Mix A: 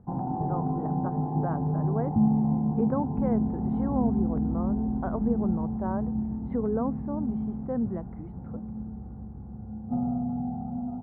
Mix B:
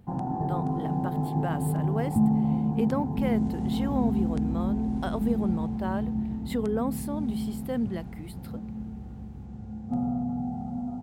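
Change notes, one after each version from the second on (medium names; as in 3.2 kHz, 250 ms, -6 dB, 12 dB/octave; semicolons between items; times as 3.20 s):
master: remove low-pass 1.3 kHz 24 dB/octave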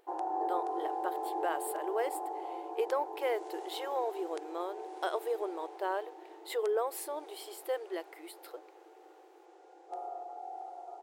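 master: add brick-wall FIR high-pass 320 Hz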